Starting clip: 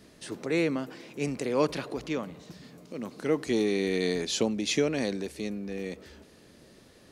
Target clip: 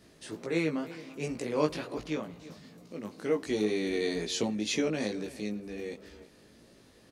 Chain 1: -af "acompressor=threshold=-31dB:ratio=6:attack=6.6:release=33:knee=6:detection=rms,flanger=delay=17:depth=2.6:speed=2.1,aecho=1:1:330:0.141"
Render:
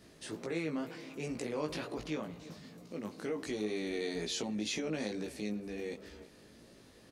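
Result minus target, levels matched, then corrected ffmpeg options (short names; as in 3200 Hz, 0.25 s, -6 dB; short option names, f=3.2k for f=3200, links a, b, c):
compressor: peak gain reduction +11 dB
-af "flanger=delay=17:depth=2.6:speed=2.1,aecho=1:1:330:0.141"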